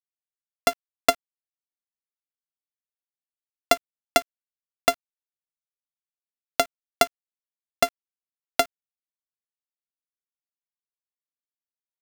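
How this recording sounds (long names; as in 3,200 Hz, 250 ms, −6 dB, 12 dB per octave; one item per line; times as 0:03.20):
a buzz of ramps at a fixed pitch in blocks of 64 samples
tremolo saw up 9.1 Hz, depth 35%
a quantiser's noise floor 8 bits, dither none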